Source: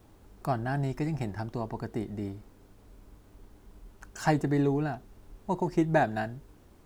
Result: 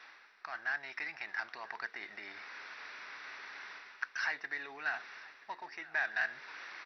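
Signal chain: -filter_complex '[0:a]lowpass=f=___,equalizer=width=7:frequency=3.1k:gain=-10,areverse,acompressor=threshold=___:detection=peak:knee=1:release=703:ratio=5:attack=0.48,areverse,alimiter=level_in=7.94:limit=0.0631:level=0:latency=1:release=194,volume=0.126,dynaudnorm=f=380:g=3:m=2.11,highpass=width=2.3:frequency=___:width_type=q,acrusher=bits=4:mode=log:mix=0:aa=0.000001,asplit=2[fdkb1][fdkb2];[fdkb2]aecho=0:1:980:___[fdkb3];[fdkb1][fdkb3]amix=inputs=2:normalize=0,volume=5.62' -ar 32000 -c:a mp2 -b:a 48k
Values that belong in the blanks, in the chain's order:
4.3k, 0.0112, 1.8k, 0.0944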